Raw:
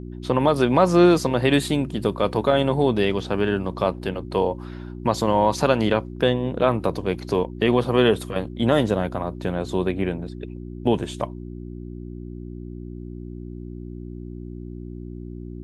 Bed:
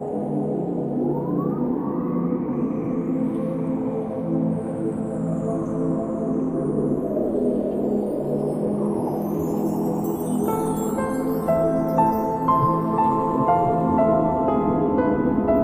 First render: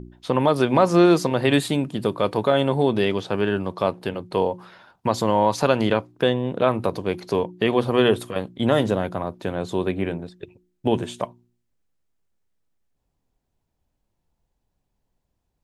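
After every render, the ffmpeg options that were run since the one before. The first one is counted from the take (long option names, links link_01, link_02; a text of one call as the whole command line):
ffmpeg -i in.wav -af "bandreject=frequency=60:width_type=h:width=4,bandreject=frequency=120:width_type=h:width=4,bandreject=frequency=180:width_type=h:width=4,bandreject=frequency=240:width_type=h:width=4,bandreject=frequency=300:width_type=h:width=4,bandreject=frequency=360:width_type=h:width=4" out.wav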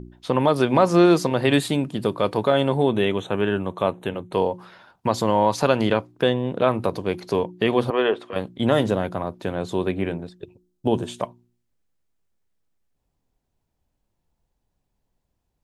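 ffmpeg -i in.wav -filter_complex "[0:a]asettb=1/sr,asplit=3[link_01][link_02][link_03];[link_01]atrim=end=2.774[link_04];[link_02]atrim=start=2.77:end=4.33,asetpts=PTS-STARTPTS,afade=type=in:duration=0.004:curve=qsin,afade=type=out:start_time=1.556:duration=0.004:curve=qsin,asuperstop=centerf=4900:order=8:qfactor=2.7[link_05];[link_03]atrim=start=4.326[link_06];[link_04][link_05]acrossfade=duration=0.004:curve1=hsin:curve2=qsin[link_07];[link_07][link_06]acrossfade=duration=0.004:curve1=qsin:curve2=hsin,asettb=1/sr,asplit=3[link_08][link_09][link_10];[link_08]atrim=end=7.904[link_11];[link_09]atrim=start=7.9:end=8.33,asetpts=PTS-STARTPTS,afade=type=in:duration=0.004:curve=qsin,afade=type=out:start_time=0.426:duration=0.004:curve=qsin,highpass=400,lowpass=2700[link_12];[link_10]atrim=start=8.326[link_13];[link_11][link_12]acrossfade=duration=0.004:curve1=hsin:curve2=qsin[link_14];[link_14][link_13]acrossfade=duration=0.004:curve1=qsin:curve2=hsin,asettb=1/sr,asplit=3[link_15][link_16][link_17];[link_15]atrim=end=10.374[link_18];[link_16]atrim=start=10.37:end=11.08,asetpts=PTS-STARTPTS,afade=type=in:duration=0.004:curve=qsin,afade=type=out:start_time=0.706:duration=0.004:curve=qsin,equalizer=frequency=2100:width=1.8:gain=-10[link_19];[link_17]atrim=start=11.076[link_20];[link_18][link_19]acrossfade=duration=0.004:curve1=hsin:curve2=qsin[link_21];[link_21][link_20]acrossfade=duration=0.004:curve1=qsin:curve2=hsin" out.wav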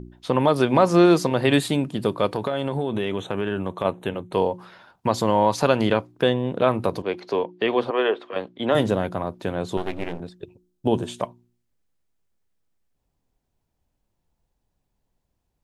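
ffmpeg -i in.wav -filter_complex "[0:a]asplit=3[link_01][link_02][link_03];[link_01]afade=type=out:start_time=2.26:duration=0.02[link_04];[link_02]acompressor=threshold=-20dB:ratio=6:attack=3.2:release=140:knee=1:detection=peak,afade=type=in:start_time=2.26:duration=0.02,afade=type=out:start_time=3.84:duration=0.02[link_05];[link_03]afade=type=in:start_time=3.84:duration=0.02[link_06];[link_04][link_05][link_06]amix=inputs=3:normalize=0,asettb=1/sr,asplit=3[link_07][link_08][link_09];[link_07]atrim=end=7.024[link_10];[link_08]atrim=start=7.02:end=8.75,asetpts=PTS-STARTPTS,afade=type=in:duration=0.004:curve=qsin,afade=type=out:start_time=1.726:duration=0.004:curve=qsin,acrossover=split=260 5300:gain=0.2 1 0.126[link_11][link_12][link_13];[link_11][link_12][link_13]amix=inputs=3:normalize=0[link_14];[link_09]atrim=start=8.746[link_15];[link_10][link_14]acrossfade=duration=0.004:curve1=hsin:curve2=qsin[link_16];[link_16][link_15]acrossfade=duration=0.004:curve1=qsin:curve2=hsin,asettb=1/sr,asplit=3[link_17][link_18][link_19];[link_17]atrim=end=9.774[link_20];[link_18]atrim=start=9.77:end=10.2,asetpts=PTS-STARTPTS,afade=type=in:duration=0.004:curve=qsin,afade=type=out:start_time=0.426:duration=0.004:curve=qsin,aeval=exprs='max(val(0),0)':channel_layout=same[link_21];[link_19]atrim=start=10.196[link_22];[link_20][link_21]acrossfade=duration=0.004:curve1=hsin:curve2=qsin[link_23];[link_23][link_22]acrossfade=duration=0.004:curve1=qsin:curve2=hsin" out.wav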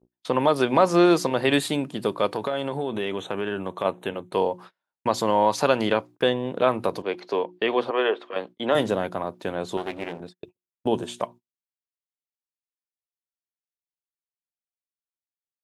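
ffmpeg -i in.wav -af "highpass=frequency=290:poles=1,agate=range=-36dB:threshold=-41dB:ratio=16:detection=peak" out.wav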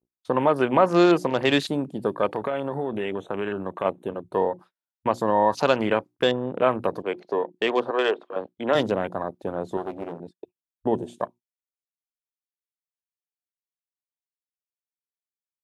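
ffmpeg -i in.wav -af "afwtdn=0.02,highshelf=frequency=6400:gain=7" out.wav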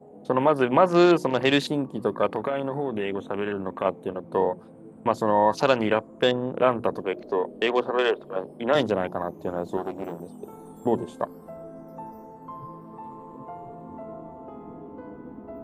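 ffmpeg -i in.wav -i bed.wav -filter_complex "[1:a]volume=-21dB[link_01];[0:a][link_01]amix=inputs=2:normalize=0" out.wav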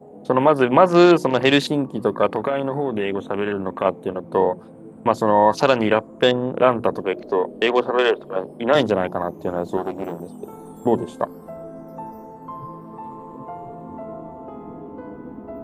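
ffmpeg -i in.wav -af "volume=5dB,alimiter=limit=-1dB:level=0:latency=1" out.wav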